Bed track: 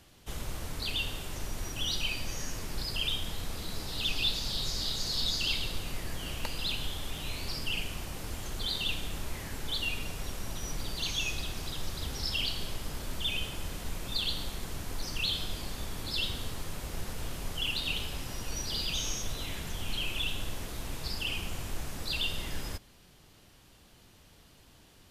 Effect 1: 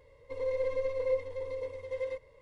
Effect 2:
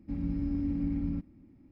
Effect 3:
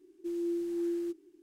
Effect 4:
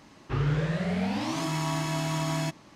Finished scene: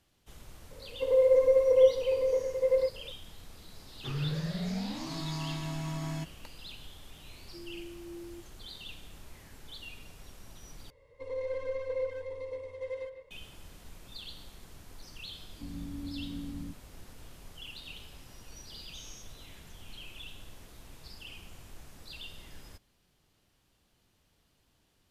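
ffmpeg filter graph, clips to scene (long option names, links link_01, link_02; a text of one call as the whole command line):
ffmpeg -i bed.wav -i cue0.wav -i cue1.wav -i cue2.wav -i cue3.wav -filter_complex "[1:a]asplit=2[link_01][link_02];[0:a]volume=-13dB[link_03];[link_01]equalizer=frequency=500:width_type=o:width=2.2:gain=14[link_04];[4:a]highpass=frequency=160:width_type=q:width=2[link_05];[link_02]asplit=2[link_06][link_07];[link_07]adelay=150,highpass=300,lowpass=3400,asoftclip=type=hard:threshold=-30dB,volume=-8dB[link_08];[link_06][link_08]amix=inputs=2:normalize=0[link_09];[link_03]asplit=2[link_10][link_11];[link_10]atrim=end=10.904[link_12];[link_09]atrim=end=2.41,asetpts=PTS-STARTPTS,volume=-3dB[link_13];[link_11]atrim=start=13.306[link_14];[link_04]atrim=end=2.41,asetpts=PTS-STARTPTS,volume=-4.5dB,afade=type=in:duration=0.004:curve=hsin,afade=type=out:start_time=2.406:duration=0.004:curve=hsin,adelay=710[link_15];[link_05]atrim=end=2.75,asetpts=PTS-STARTPTS,volume=-11dB,afade=type=in:duration=0.004:curve=hsin,afade=type=out:start_time=2.746:duration=0.004:curve=hsin,adelay=3740[link_16];[3:a]atrim=end=1.42,asetpts=PTS-STARTPTS,volume=-12.5dB,afade=type=in:duration=0.004:curve=hsin,afade=type=out:start_time=1.416:duration=0.004:curve=hsin,adelay=7290[link_17];[2:a]atrim=end=1.71,asetpts=PTS-STARTPTS,volume=-8.5dB,afade=type=in:duration=0.004:curve=hsin,afade=type=out:start_time=1.706:duration=0.004:curve=hsin,adelay=15520[link_18];[link_12][link_13]acrossfade=duration=0.004:curve1=hsin:curve2=hsin[link_19];[link_19][link_14]acrossfade=duration=0.004:curve1=hsin:curve2=hsin[link_20];[link_20][link_15][link_16][link_17][link_18]amix=inputs=5:normalize=0" out.wav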